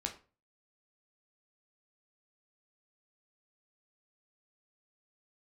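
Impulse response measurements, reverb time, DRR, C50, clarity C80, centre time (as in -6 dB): 0.35 s, 2.5 dB, 12.0 dB, 17.0 dB, 14 ms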